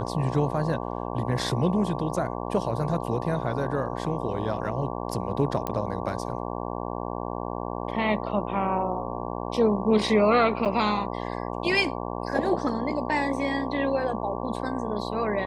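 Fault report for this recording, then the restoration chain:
buzz 60 Hz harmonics 19 -32 dBFS
5.67 pop -14 dBFS
10.65–10.66 gap 7.7 ms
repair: de-click; de-hum 60 Hz, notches 19; interpolate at 10.65, 7.7 ms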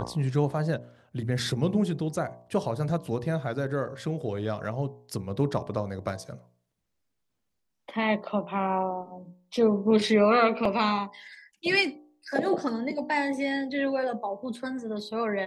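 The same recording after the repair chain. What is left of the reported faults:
none

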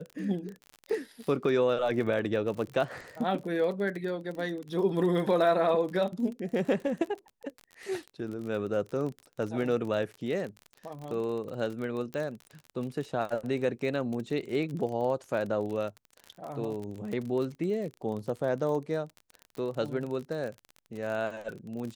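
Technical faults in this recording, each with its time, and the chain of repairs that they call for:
crackle 34/s -35 dBFS
12.14 pop -24 dBFS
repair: de-click

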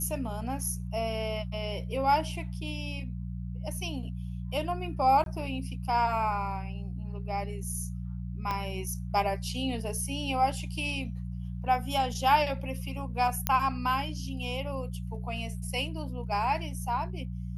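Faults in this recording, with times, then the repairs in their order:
hum 60 Hz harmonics 3 -36 dBFS
5.24–5.26 gap 22 ms
8.51 pop -18 dBFS
13.47 pop -7 dBFS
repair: de-click; de-hum 60 Hz, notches 3; interpolate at 5.24, 22 ms

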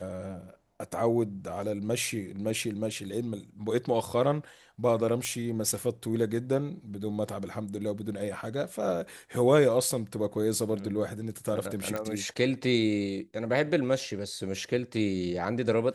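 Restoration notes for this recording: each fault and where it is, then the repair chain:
5.25 pop -15 dBFS
11.96 pop -19 dBFS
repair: de-click

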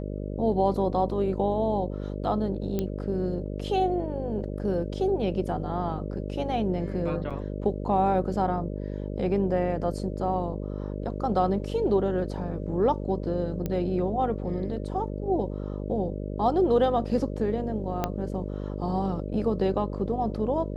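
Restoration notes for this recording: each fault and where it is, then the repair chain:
buzz 50 Hz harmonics 12 -33 dBFS
2.79 pop -15 dBFS
7.3–7.31 gap 6.1 ms
13.66 pop -17 dBFS
18.04 pop -12 dBFS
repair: de-click; de-hum 50 Hz, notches 12; interpolate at 7.3, 6.1 ms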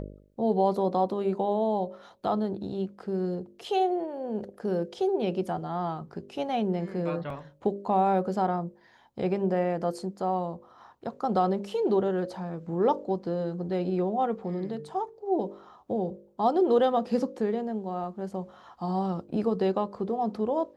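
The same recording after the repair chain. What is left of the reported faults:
18.04 pop

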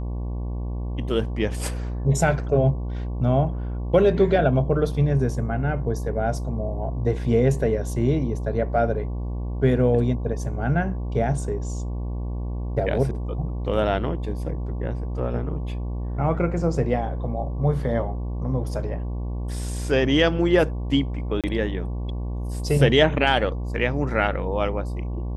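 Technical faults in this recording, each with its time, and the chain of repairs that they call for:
buzz 60 Hz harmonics 19 -28 dBFS
21.41–21.44 gap 27 ms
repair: de-hum 60 Hz, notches 19; interpolate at 21.41, 27 ms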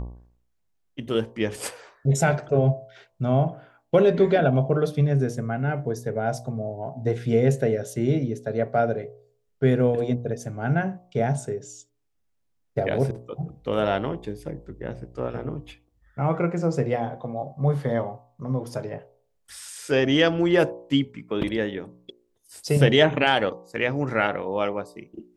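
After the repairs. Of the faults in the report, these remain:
none

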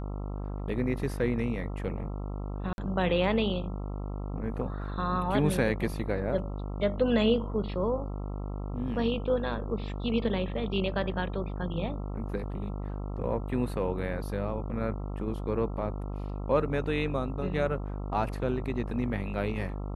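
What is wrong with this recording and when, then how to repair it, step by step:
buzz 50 Hz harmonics 27 -35 dBFS
2.73–2.78 gap 51 ms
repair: de-hum 50 Hz, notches 27; interpolate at 2.73, 51 ms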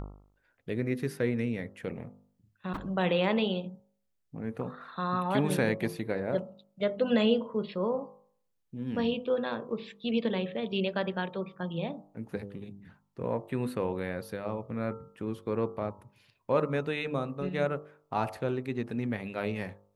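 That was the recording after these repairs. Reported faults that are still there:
none

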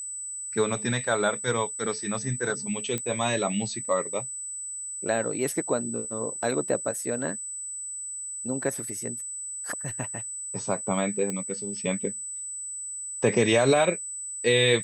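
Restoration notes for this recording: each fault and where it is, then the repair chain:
tone 8000 Hz -33 dBFS
2.98 pop -15 dBFS
11.3 pop -17 dBFS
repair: de-click; notch 8000 Hz, Q 30

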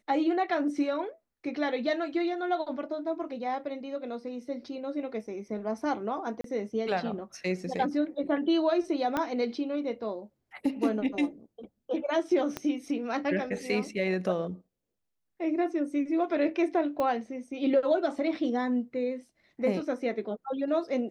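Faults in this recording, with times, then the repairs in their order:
6.41–6.44 gap 33 ms
9.17 pop -16 dBFS
12.57 pop -17 dBFS
17 pop -19 dBFS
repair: de-click; interpolate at 6.41, 33 ms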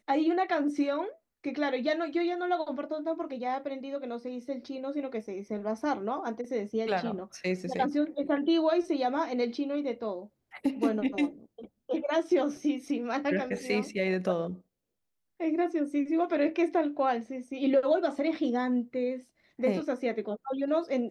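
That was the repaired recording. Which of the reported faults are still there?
9.17 pop
12.57 pop
17 pop

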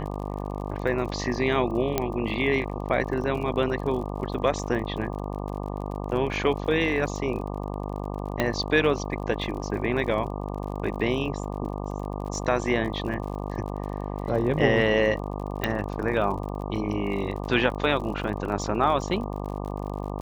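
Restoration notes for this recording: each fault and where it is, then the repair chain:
buzz 50 Hz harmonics 24 -32 dBFS
crackle 45/s -35 dBFS
1.98 pop -8 dBFS
8.4 pop -10 dBFS
15.64 pop -11 dBFS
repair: de-click; de-hum 50 Hz, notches 24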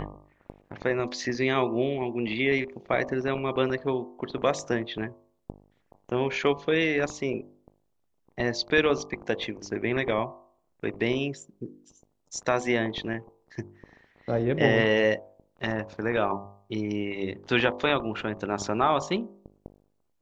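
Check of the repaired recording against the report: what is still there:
none

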